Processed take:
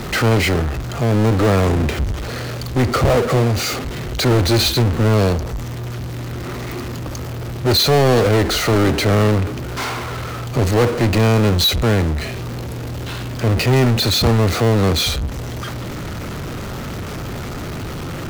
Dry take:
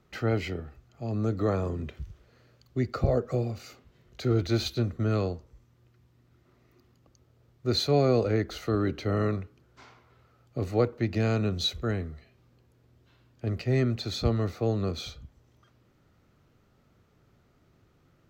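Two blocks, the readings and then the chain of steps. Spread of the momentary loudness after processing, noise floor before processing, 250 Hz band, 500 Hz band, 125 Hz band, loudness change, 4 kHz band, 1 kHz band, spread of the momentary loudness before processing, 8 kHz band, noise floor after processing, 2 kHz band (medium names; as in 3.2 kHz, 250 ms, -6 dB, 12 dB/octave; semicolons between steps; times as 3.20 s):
13 LU, -65 dBFS, +11.5 dB, +11.5 dB, +13.0 dB, +10.5 dB, +16.0 dB, +16.0 dB, 13 LU, +20.5 dB, -27 dBFS, +18.0 dB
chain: power-law waveshaper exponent 0.35; trim +3.5 dB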